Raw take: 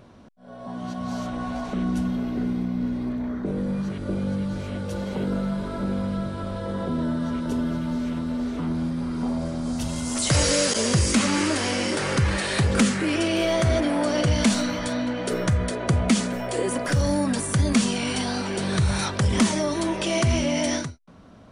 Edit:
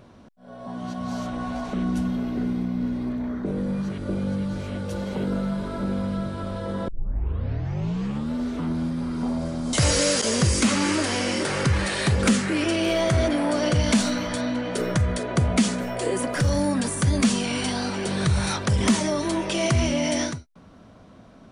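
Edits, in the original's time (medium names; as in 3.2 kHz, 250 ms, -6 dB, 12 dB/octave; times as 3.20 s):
6.88 s: tape start 1.46 s
9.73–10.25 s: delete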